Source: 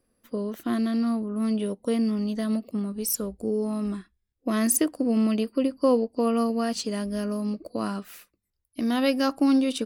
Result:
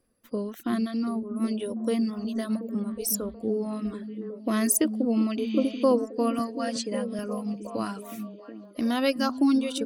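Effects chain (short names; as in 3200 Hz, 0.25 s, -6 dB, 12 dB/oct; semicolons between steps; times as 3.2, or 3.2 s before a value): reverb removal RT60 1.9 s; 5.42–5.81 spectral repair 1400–7500 Hz before; 6.39–7.19 elliptic band-pass 150–9600 Hz; on a send: delay with a stepping band-pass 0.366 s, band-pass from 190 Hz, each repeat 0.7 oct, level -5 dB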